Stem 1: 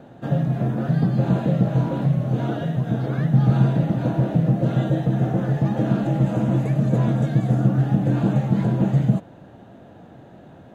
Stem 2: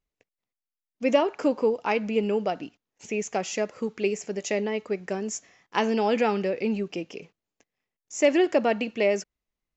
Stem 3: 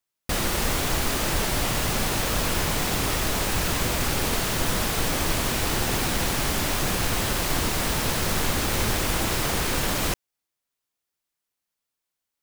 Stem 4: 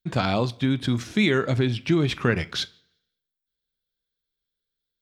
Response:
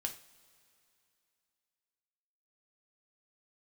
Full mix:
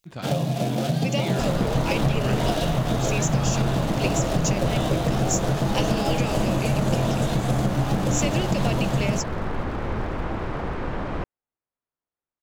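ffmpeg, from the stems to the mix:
-filter_complex "[0:a]highpass=f=76:w=0.5412,highpass=f=76:w=1.3066,adynamicequalizer=threshold=0.00794:dfrequency=660:dqfactor=1.3:tfrequency=660:tqfactor=1.3:attack=5:release=100:ratio=0.375:range=4:mode=boostabove:tftype=bell,aeval=exprs='sgn(val(0))*max(abs(val(0))-0.0119,0)':c=same,volume=1dB[a];[1:a]volume=-3dB[b];[2:a]lowpass=1.3k,adelay=1100,volume=-1dB[c];[3:a]volume=-12dB[d];[a][b]amix=inputs=2:normalize=0,aexciter=amount=2.5:drive=9.8:freq=2.5k,acompressor=threshold=-20dB:ratio=6,volume=0dB[e];[c][d][e]amix=inputs=3:normalize=0"

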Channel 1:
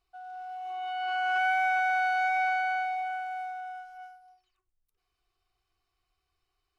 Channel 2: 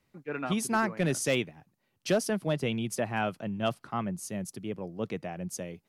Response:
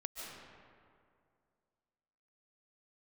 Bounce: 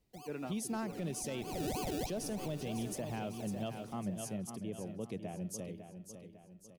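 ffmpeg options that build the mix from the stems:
-filter_complex "[0:a]acrusher=samples=33:mix=1:aa=0.000001:lfo=1:lforange=19.8:lforate=3.2,volume=-1.5dB,asplit=2[a][b];[b]volume=-16dB[c];[1:a]volume=-4dB,asplit=3[d][e][f];[e]volume=-9.5dB[g];[f]apad=whole_len=299141[h];[a][h]sidechaincompress=threshold=-54dB:ratio=5:attack=6.3:release=177[i];[2:a]atrim=start_sample=2205[j];[c][j]afir=irnorm=-1:irlink=0[k];[g]aecho=0:1:551|1102|1653|2204|2755|3306:1|0.46|0.212|0.0973|0.0448|0.0206[l];[i][d][k][l]amix=inputs=4:normalize=0,equalizer=f=1.5k:w=0.86:g=-11.5,alimiter=level_in=6dB:limit=-24dB:level=0:latency=1:release=93,volume=-6dB"

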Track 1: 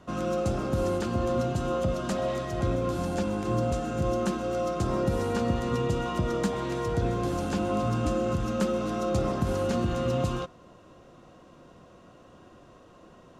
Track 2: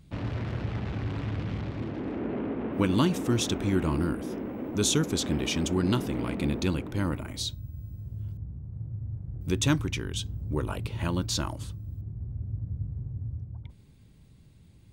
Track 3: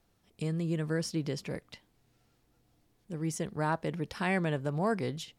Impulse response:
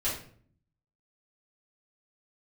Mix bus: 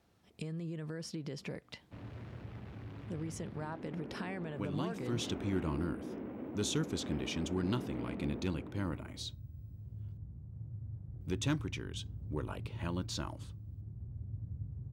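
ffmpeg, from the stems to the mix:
-filter_complex "[1:a]adelay=1800,volume=-8dB,afade=t=in:st=4.92:d=0.36:silence=0.473151[a];[2:a]alimiter=level_in=4.5dB:limit=-24dB:level=0:latency=1:release=91,volume=-4.5dB,acompressor=threshold=-41dB:ratio=4,volume=2.5dB[b];[a][b]amix=inputs=2:normalize=0,highpass=55,highshelf=f=6.8k:g=-8.5,asoftclip=type=hard:threshold=-25dB"

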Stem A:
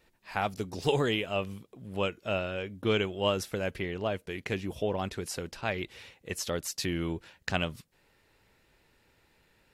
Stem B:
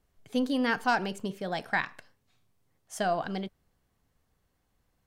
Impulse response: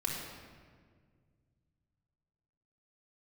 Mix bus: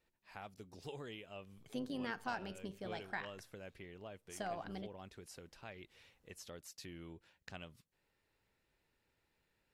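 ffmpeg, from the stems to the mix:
-filter_complex "[0:a]volume=-14.5dB[a];[1:a]tremolo=f=110:d=0.519,adelay=1400,volume=-2.5dB[b];[a][b]amix=inputs=2:normalize=0,acompressor=threshold=-55dB:ratio=1.5"

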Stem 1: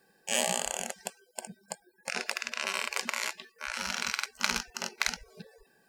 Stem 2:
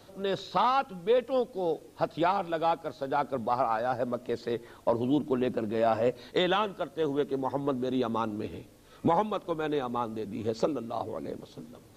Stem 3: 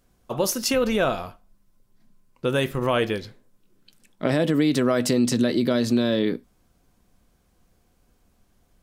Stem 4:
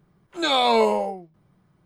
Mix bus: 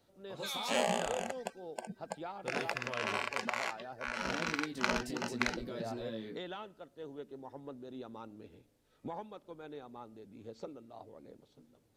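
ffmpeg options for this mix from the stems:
-filter_complex "[0:a]lowpass=f=1.3k:p=1,adelay=400,volume=2dB[a];[1:a]equalizer=f=1.1k:w=7.8:g=-6,volume=-17dB[b];[2:a]highpass=56,flanger=delay=17:depth=2.3:speed=1.1,volume=-17.5dB[c];[3:a]highpass=1.4k,volume=-16.5dB[d];[a][b][c][d]amix=inputs=4:normalize=0"

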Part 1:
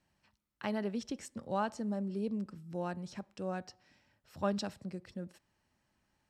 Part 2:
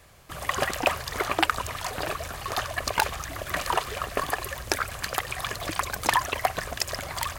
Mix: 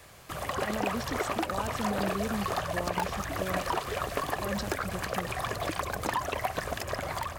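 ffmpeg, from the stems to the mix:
-filter_complex "[0:a]alimiter=level_in=6dB:limit=-24dB:level=0:latency=1,volume=-6dB,volume=1dB[a];[1:a]asoftclip=type=tanh:threshold=-20.5dB,acrossover=split=950|2500[b][c][d];[b]acompressor=threshold=-35dB:ratio=4[e];[c]acompressor=threshold=-45dB:ratio=4[f];[d]acompressor=threshold=-49dB:ratio=4[g];[e][f][g]amix=inputs=3:normalize=0,volume=3dB[h];[a][h]amix=inputs=2:normalize=0,dynaudnorm=f=370:g=3:m=3dB,lowshelf=f=65:g=-10"

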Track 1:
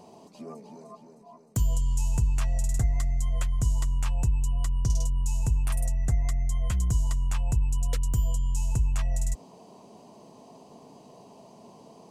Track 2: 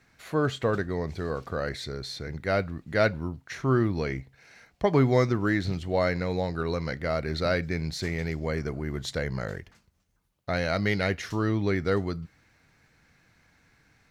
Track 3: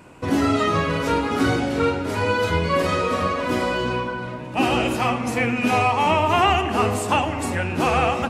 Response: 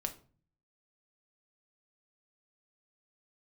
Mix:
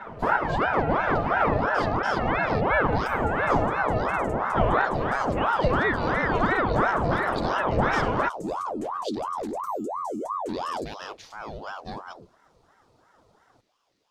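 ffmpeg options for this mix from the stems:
-filter_complex "[0:a]adelay=1500,volume=-13dB[a];[1:a]equalizer=f=125:t=o:w=1:g=-11,equalizer=f=1k:t=o:w=1:g=-6,equalizer=f=2k:t=o:w=1:g=-7,equalizer=f=4k:t=o:w=1:g=9,volume=-8dB,asplit=2[b][c];[2:a]lowpass=2k,equalizer=f=320:w=0.51:g=10,volume=-2dB[d];[c]apad=whole_len=365807[e];[d][e]sidechaincompress=threshold=-36dB:ratio=8:attack=35:release=597[f];[a][f]amix=inputs=2:normalize=0,aecho=1:1:5.3:0.86,acompressor=threshold=-25dB:ratio=2,volume=0dB[g];[b][g]amix=inputs=2:normalize=0,lowshelf=f=260:g=7,aeval=exprs='val(0)*sin(2*PI*720*n/s+720*0.65/2.9*sin(2*PI*2.9*n/s))':c=same"

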